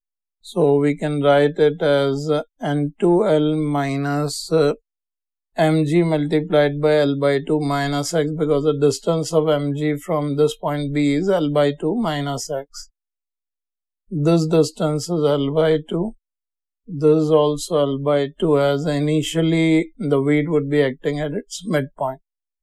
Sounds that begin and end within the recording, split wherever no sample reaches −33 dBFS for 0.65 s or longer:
0:05.58–0:12.84
0:14.12–0:16.12

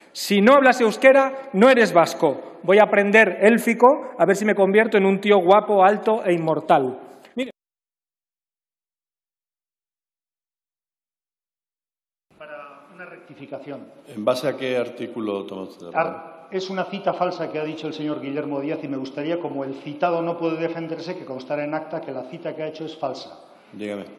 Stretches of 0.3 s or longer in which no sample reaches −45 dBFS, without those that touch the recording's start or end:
0:07.51–0:12.40

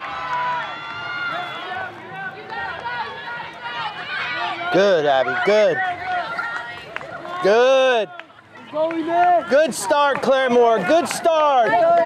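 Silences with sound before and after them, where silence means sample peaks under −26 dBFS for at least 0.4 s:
0:08.20–0:08.74

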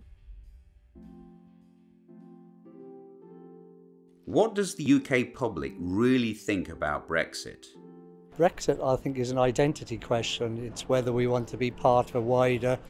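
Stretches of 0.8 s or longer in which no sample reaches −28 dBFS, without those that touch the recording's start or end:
0:07.48–0:08.40

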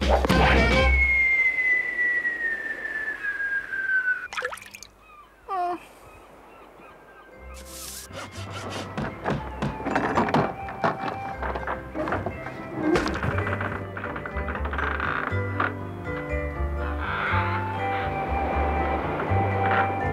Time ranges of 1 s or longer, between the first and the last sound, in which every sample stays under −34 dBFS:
0:05.77–0:07.44

